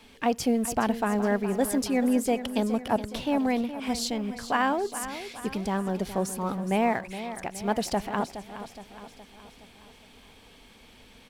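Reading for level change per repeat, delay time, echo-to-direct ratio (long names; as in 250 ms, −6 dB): −5.5 dB, 418 ms, −10.5 dB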